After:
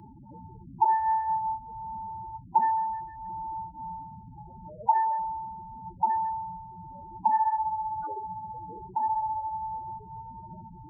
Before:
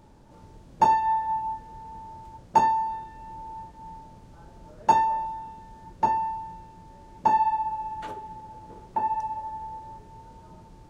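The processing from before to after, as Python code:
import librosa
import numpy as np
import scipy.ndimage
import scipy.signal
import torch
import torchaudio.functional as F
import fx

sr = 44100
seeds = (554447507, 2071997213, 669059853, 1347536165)

y = scipy.signal.sosfilt(scipy.signal.butter(2, 44.0, 'highpass', fs=sr, output='sos'), x)
y = fx.notch(y, sr, hz=2700.0, q=7.8)
y = fx.transient(y, sr, attack_db=-3, sustain_db=4, at=(8.68, 9.41))
y = fx.spec_topn(y, sr, count=8)
y = fx.band_squash(y, sr, depth_pct=40)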